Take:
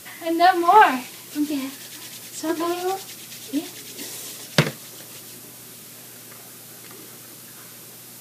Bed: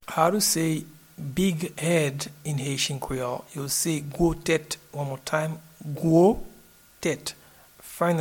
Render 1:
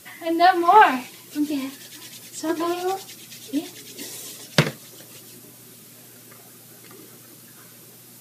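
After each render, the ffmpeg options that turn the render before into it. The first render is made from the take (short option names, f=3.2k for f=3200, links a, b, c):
-af "afftdn=nr=6:nf=-42"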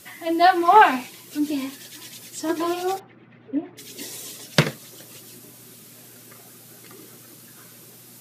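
-filter_complex "[0:a]asplit=3[a][b][c];[a]afade=t=out:st=2.98:d=0.02[d];[b]lowpass=f=1.8k:w=0.5412,lowpass=f=1.8k:w=1.3066,afade=t=in:st=2.98:d=0.02,afade=t=out:st=3.77:d=0.02[e];[c]afade=t=in:st=3.77:d=0.02[f];[d][e][f]amix=inputs=3:normalize=0"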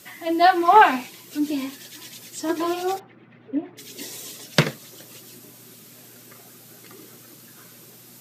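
-af "highpass=93,equalizer=f=10k:w=7.4:g=-8"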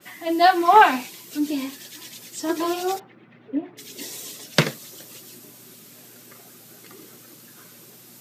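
-af "highpass=120,adynamicequalizer=threshold=0.0141:dfrequency=3600:dqfactor=0.7:tfrequency=3600:tqfactor=0.7:attack=5:release=100:ratio=0.375:range=2:mode=boostabove:tftype=highshelf"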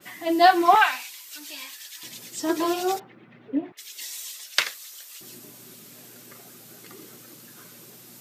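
-filter_complex "[0:a]asettb=1/sr,asplit=3[a][b][c];[a]atrim=end=0.754[d];[b]atrim=start=0.75:end=2.03,asetpts=PTS-STARTPTS,afade=t=in:d=0.004:c=qsin,afade=t=out:st=1.276:d=0.004:c=qsin,highpass=1.3k[e];[c]atrim=start=2.026[f];[d][e]acrossfade=d=0.004:c1=hsin:c2=qsin[g];[g][f]acrossfade=d=0.004:c1=qsin:c2=hsin,asettb=1/sr,asplit=3[h][i][j];[h]atrim=end=3.724[k];[i]atrim=start=3.72:end=5.21,asetpts=PTS-STARTPTS,afade=t=in:d=0.004:c=qsin,afade=t=out:st=1.486:d=0.004:c=qsin,highpass=1.4k[l];[j]atrim=start=5.206[m];[k][l]acrossfade=d=0.004:c1=hsin:c2=qsin[n];[n][m]acrossfade=d=0.004:c1=qsin:c2=hsin"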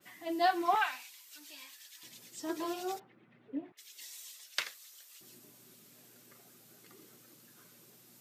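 -af "volume=-12.5dB"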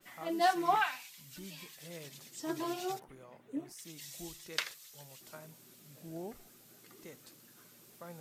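-filter_complex "[1:a]volume=-26dB[a];[0:a][a]amix=inputs=2:normalize=0"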